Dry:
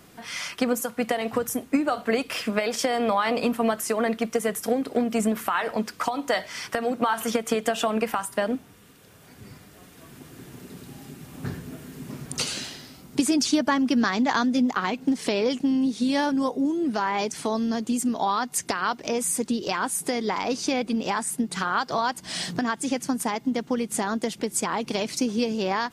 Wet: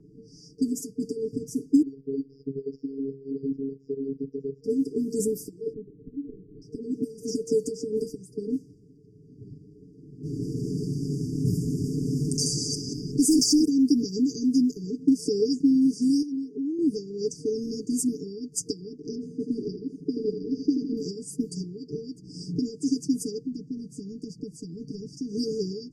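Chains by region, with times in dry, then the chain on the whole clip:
0:01.82–0:04.64: Gaussian smoothing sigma 2.4 samples + output level in coarse steps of 13 dB + phases set to zero 136 Hz
0:05.73–0:06.62: variable-slope delta modulation 16 kbit/s + downward compressor 5 to 1, threshold −31 dBFS
0:10.23–0:13.65: delay that plays each chunk backwards 180 ms, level −3.5 dB + hard clipping −19.5 dBFS + envelope flattener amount 50%
0:16.22–0:16.79: high-pass filter 200 Hz + downward compressor 16 to 1, threshold −29 dBFS
0:19.15–0:20.97: high-frequency loss of the air 290 metres + repeating echo 81 ms, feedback 51%, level −8 dB
0:23.46–0:25.32: flat-topped bell 820 Hz −10.5 dB 2.9 octaves + downward compressor 10 to 1, threshold −28 dBFS
whole clip: brick-wall band-stop 460–4,600 Hz; low-pass that shuts in the quiet parts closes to 1,400 Hz, open at −21 dBFS; comb filter 6.8 ms, depth 69%

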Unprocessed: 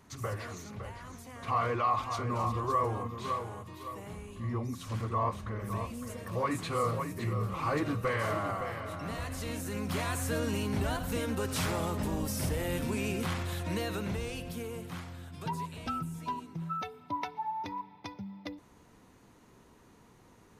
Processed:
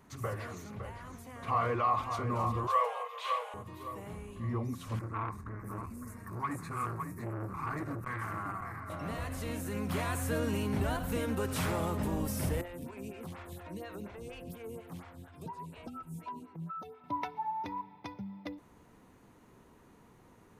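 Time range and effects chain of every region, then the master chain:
0:02.67–0:03.54: Butterworth high-pass 470 Hz 96 dB per octave + parametric band 2,900 Hz +11.5 dB 1.1 octaves
0:04.99–0:08.90: phaser with its sweep stopped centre 1,300 Hz, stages 4 + saturating transformer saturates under 750 Hz
0:12.61–0:17.04: downward compressor, threshold −36 dBFS + phaser with staggered stages 4.2 Hz
whole clip: parametric band 5,200 Hz −6 dB 1.6 octaves; mains-hum notches 50/100 Hz

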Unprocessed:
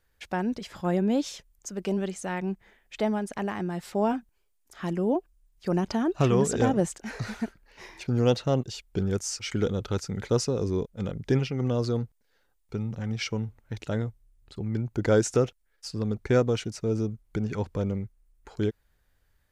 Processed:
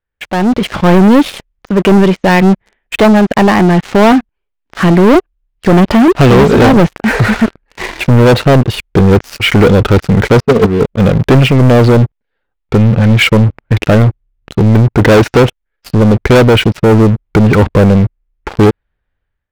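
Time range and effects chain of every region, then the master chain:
0:10.40–0:10.81: hollow resonant body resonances 220/440/680/1,100 Hz, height 13 dB, ringing for 80 ms + noise gate −20 dBFS, range −14 dB + head-to-tape spacing loss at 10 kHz 36 dB
whole clip: low-pass filter 3,200 Hz 24 dB per octave; leveller curve on the samples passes 5; automatic gain control gain up to 12 dB

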